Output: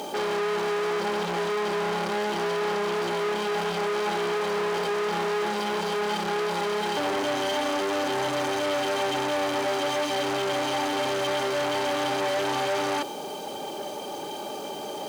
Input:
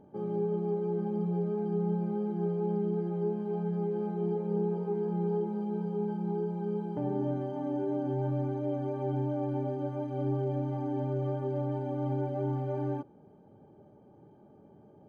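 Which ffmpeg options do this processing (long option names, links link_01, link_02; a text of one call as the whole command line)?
ffmpeg -i in.wav -filter_complex "[0:a]aexciter=amount=11.2:drive=7.4:freq=2700,asplit=2[link_01][link_02];[link_02]highpass=frequency=720:poles=1,volume=37dB,asoftclip=type=tanh:threshold=-20dB[link_03];[link_01][link_03]amix=inputs=2:normalize=0,lowpass=frequency=1500:poles=1,volume=-6dB,highpass=frequency=1000:poles=1,volume=7dB" out.wav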